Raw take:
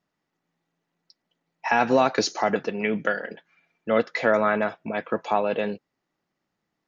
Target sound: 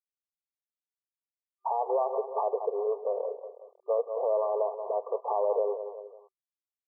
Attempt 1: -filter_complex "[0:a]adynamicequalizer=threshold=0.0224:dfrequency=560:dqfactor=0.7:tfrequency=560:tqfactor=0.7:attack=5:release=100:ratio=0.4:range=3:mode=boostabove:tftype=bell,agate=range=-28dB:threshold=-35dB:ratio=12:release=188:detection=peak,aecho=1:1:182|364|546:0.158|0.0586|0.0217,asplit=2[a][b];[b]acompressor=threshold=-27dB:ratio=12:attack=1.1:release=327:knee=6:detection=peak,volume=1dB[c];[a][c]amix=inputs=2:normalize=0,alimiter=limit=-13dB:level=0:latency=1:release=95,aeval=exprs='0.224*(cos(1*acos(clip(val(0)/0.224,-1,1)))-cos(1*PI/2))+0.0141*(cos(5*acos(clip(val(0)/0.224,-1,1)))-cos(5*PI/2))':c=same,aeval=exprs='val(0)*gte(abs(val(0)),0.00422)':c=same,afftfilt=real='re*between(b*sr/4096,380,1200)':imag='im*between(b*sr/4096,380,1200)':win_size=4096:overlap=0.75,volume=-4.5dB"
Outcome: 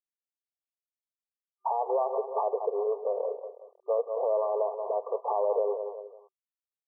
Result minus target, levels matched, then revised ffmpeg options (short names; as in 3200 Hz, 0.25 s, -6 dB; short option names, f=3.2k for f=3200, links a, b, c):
compressor: peak gain reduction -9 dB
-filter_complex "[0:a]adynamicequalizer=threshold=0.0224:dfrequency=560:dqfactor=0.7:tfrequency=560:tqfactor=0.7:attack=5:release=100:ratio=0.4:range=3:mode=boostabove:tftype=bell,agate=range=-28dB:threshold=-35dB:ratio=12:release=188:detection=peak,aecho=1:1:182|364|546:0.158|0.0586|0.0217,asplit=2[a][b];[b]acompressor=threshold=-37dB:ratio=12:attack=1.1:release=327:knee=6:detection=peak,volume=1dB[c];[a][c]amix=inputs=2:normalize=0,alimiter=limit=-13dB:level=0:latency=1:release=95,aeval=exprs='0.224*(cos(1*acos(clip(val(0)/0.224,-1,1)))-cos(1*PI/2))+0.0141*(cos(5*acos(clip(val(0)/0.224,-1,1)))-cos(5*PI/2))':c=same,aeval=exprs='val(0)*gte(abs(val(0)),0.00422)':c=same,afftfilt=real='re*between(b*sr/4096,380,1200)':imag='im*between(b*sr/4096,380,1200)':win_size=4096:overlap=0.75,volume=-4.5dB"